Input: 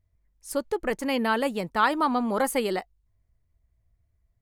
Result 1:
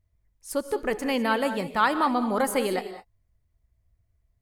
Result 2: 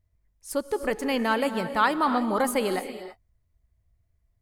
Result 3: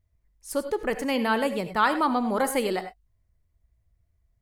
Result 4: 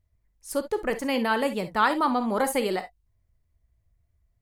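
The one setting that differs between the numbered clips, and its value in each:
non-linear reverb, gate: 230, 350, 120, 80 ms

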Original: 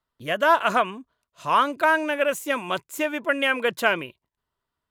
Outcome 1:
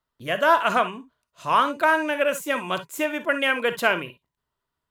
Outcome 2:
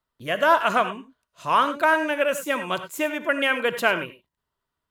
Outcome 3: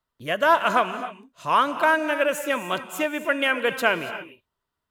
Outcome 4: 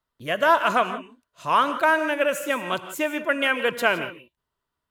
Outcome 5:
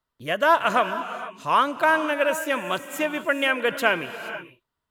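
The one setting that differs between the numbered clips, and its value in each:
non-linear reverb, gate: 80, 120, 310, 190, 500 ms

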